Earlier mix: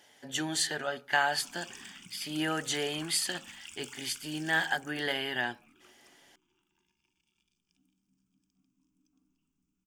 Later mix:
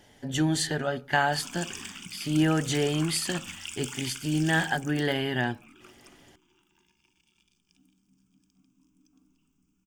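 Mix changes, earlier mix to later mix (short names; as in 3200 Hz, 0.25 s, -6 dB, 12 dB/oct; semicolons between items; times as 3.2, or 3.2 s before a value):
speech: remove HPF 900 Hz 6 dB/oct; background +9.0 dB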